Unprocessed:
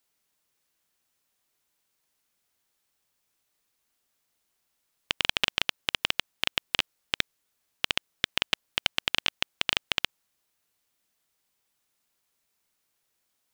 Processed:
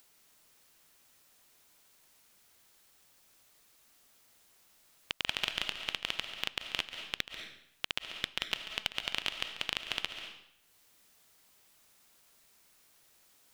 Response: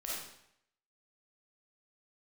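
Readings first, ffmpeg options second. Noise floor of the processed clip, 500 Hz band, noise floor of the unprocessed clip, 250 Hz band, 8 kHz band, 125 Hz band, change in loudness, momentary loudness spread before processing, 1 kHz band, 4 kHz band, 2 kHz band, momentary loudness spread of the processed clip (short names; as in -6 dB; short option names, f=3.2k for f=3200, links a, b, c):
-66 dBFS, -7.0 dB, -77 dBFS, -7.5 dB, -7.0 dB, -7.5 dB, -7.5 dB, 4 LU, -7.0 dB, -7.0 dB, -7.0 dB, 9 LU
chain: -filter_complex "[0:a]alimiter=limit=-11.5dB:level=0:latency=1:release=275,acompressor=mode=upward:threshold=-54dB:ratio=2.5,asplit=2[a][b];[1:a]atrim=start_sample=2205,adelay=140[c];[b][c]afir=irnorm=-1:irlink=0,volume=-8dB[d];[a][d]amix=inputs=2:normalize=0"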